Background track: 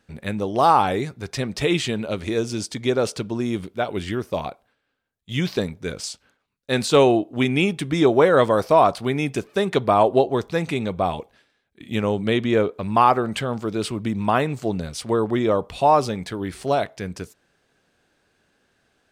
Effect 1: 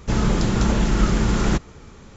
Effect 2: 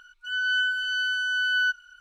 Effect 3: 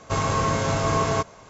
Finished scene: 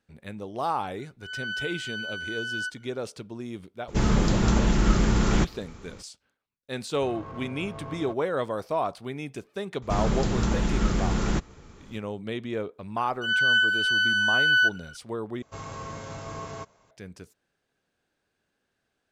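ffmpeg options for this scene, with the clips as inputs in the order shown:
ffmpeg -i bed.wav -i cue0.wav -i cue1.wav -i cue2.wav -filter_complex "[2:a]asplit=2[link_01][link_02];[1:a]asplit=2[link_03][link_04];[3:a]asplit=2[link_05][link_06];[0:a]volume=-12dB[link_07];[link_05]adynamicsmooth=sensitivity=0.5:basefreq=1400[link_08];[link_02]acontrast=39[link_09];[link_07]asplit=2[link_10][link_11];[link_10]atrim=end=15.424[link_12];[link_06]atrim=end=1.49,asetpts=PTS-STARTPTS,volume=-15dB[link_13];[link_11]atrim=start=16.906[link_14];[link_01]atrim=end=2,asetpts=PTS-STARTPTS,volume=-8.5dB,afade=type=in:duration=0.004:curve=hsin,afade=type=out:start_time=1.996:duration=0.004:curve=hsin,adelay=980[link_15];[link_03]atrim=end=2.16,asetpts=PTS-STARTPTS,volume=-2.5dB,afade=type=in:duration=0.02,afade=type=out:start_time=2.14:duration=0.02,adelay=3870[link_16];[link_08]atrim=end=1.49,asetpts=PTS-STARTPTS,volume=-17dB,afade=type=in:duration=0.004:curve=hsin,afade=type=out:start_time=1.486:duration=0.004:curve=hsin,adelay=6910[link_17];[link_04]atrim=end=2.16,asetpts=PTS-STARTPTS,volume=-6dB,afade=type=in:duration=0.004:curve=hsin,afade=type=out:start_time=2.156:duration=0.004:curve=hsin,adelay=9820[link_18];[link_09]atrim=end=2,asetpts=PTS-STARTPTS,volume=-2dB,afade=type=in:duration=0.004:curve=hsin,afade=type=out:start_time=1.996:duration=0.004:curve=hsin,adelay=12970[link_19];[link_12][link_13]acrossfade=duration=0.004:curve1=hsin:curve2=hsin[link_20];[link_20][link_14]acrossfade=duration=0.004:curve1=hsin:curve2=hsin[link_21];[link_21][link_15][link_16][link_17][link_18][link_19]amix=inputs=6:normalize=0" out.wav

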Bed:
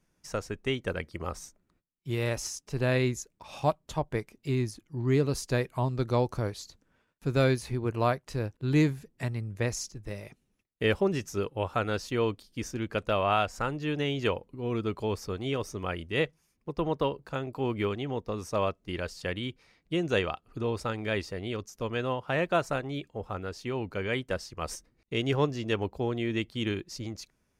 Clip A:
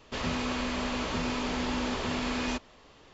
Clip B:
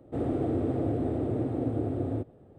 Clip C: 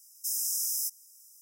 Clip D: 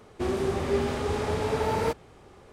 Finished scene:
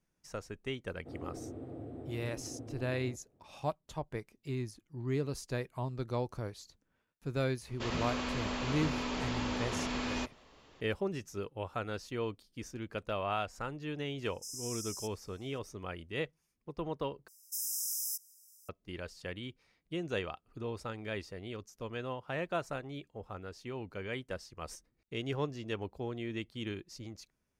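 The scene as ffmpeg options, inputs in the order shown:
ffmpeg -i bed.wav -i cue0.wav -i cue1.wav -i cue2.wav -filter_complex "[3:a]asplit=2[link_01][link_02];[0:a]volume=-8.5dB[link_03];[link_01]lowpass=5400[link_04];[link_03]asplit=2[link_05][link_06];[link_05]atrim=end=17.284[link_07];[link_02]atrim=end=1.41,asetpts=PTS-STARTPTS,volume=-5.5dB[link_08];[link_06]atrim=start=18.686[link_09];[2:a]atrim=end=2.58,asetpts=PTS-STARTPTS,volume=-16dB,afade=type=in:duration=0.004:curve=hsin,afade=type=out:start_time=2.576:duration=0.004:curve=hsin,adelay=930[link_10];[1:a]atrim=end=3.13,asetpts=PTS-STARTPTS,volume=-4.5dB,afade=type=in:duration=0.004:curve=hsin,afade=type=out:start_time=3.126:duration=0.004:curve=hsin,adelay=7680[link_11];[link_04]atrim=end=1.41,asetpts=PTS-STARTPTS,volume=-3dB,afade=type=in:duration=0.004:curve=hsin,afade=type=out:start_time=1.406:duration=0.004:curve=hsin,adelay=14180[link_12];[link_07][link_08]acrossfade=duration=0.004:curve1=hsin:curve2=hsin[link_13];[link_13][link_09]acrossfade=duration=0.004:curve1=hsin:curve2=hsin[link_14];[link_14][link_10][link_11][link_12]amix=inputs=4:normalize=0" out.wav

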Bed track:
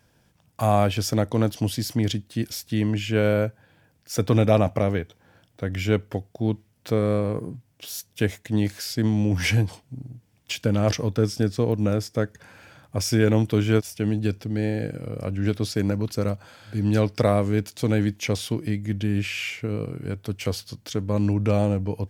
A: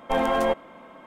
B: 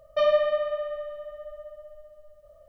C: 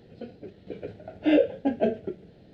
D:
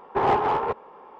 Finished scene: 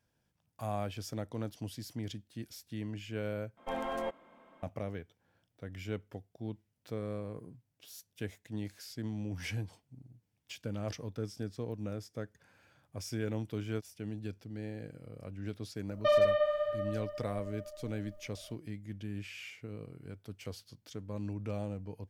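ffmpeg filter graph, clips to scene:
ffmpeg -i bed.wav -i cue0.wav -i cue1.wav -filter_complex "[0:a]volume=-16.5dB[link_01];[2:a]asoftclip=type=hard:threshold=-16.5dB[link_02];[link_01]asplit=2[link_03][link_04];[link_03]atrim=end=3.574[link_05];[1:a]atrim=end=1.06,asetpts=PTS-STARTPTS,volume=-13.5dB[link_06];[link_04]atrim=start=4.626[link_07];[link_02]atrim=end=2.68,asetpts=PTS-STARTPTS,volume=-3.5dB,afade=type=in:duration=0.004:curve=hsin,afade=type=out:start_time=2.676:duration=0.004:curve=hsin,adelay=700308S[link_08];[link_05][link_06]acrossfade=duration=0.004:curve1=hsin:curve2=hsin[link_09];[link_09][link_07]acrossfade=duration=0.004:curve1=hsin:curve2=hsin[link_10];[link_10][link_08]amix=inputs=2:normalize=0" out.wav

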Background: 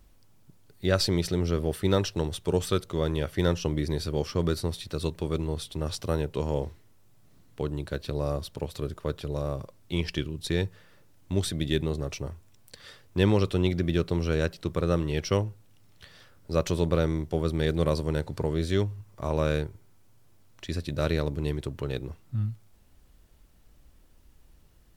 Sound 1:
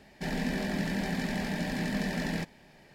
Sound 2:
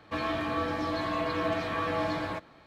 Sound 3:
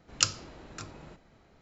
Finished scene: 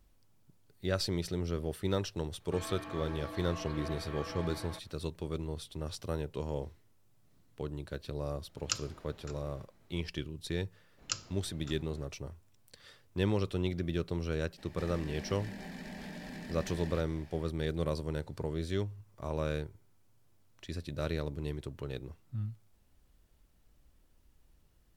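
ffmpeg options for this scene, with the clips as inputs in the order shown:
ffmpeg -i bed.wav -i cue0.wav -i cue1.wav -i cue2.wav -filter_complex "[3:a]asplit=2[link_01][link_02];[0:a]volume=-8dB[link_03];[link_02]agate=range=-33dB:threshold=-50dB:ratio=3:release=100:detection=peak[link_04];[1:a]acompressor=threshold=-40dB:ratio=6:attack=3.2:release=140:knee=1:detection=peak[link_05];[2:a]atrim=end=2.66,asetpts=PTS-STARTPTS,volume=-13dB,afade=type=in:duration=0.004:curve=hsin,afade=type=out:start_time=2.656:duration=0.004:curve=hsin,adelay=2400[link_06];[link_01]atrim=end=1.61,asetpts=PTS-STARTPTS,volume=-8.5dB,afade=type=in:duration=0.004:curve=hsin,afade=type=out:start_time=1.606:duration=0.004:curve=hsin,adelay=8490[link_07];[link_04]atrim=end=1.61,asetpts=PTS-STARTPTS,volume=-10.5dB,afade=type=in:duration=0.004:curve=hsin,afade=type=out:start_time=1.606:duration=0.004:curve=hsin,adelay=10890[link_08];[link_05]atrim=end=2.94,asetpts=PTS-STARTPTS,volume=-1.5dB,afade=type=in:duration=0.02,afade=type=out:start_time=2.92:duration=0.02,adelay=14570[link_09];[link_03][link_06][link_07][link_08][link_09]amix=inputs=5:normalize=0" out.wav

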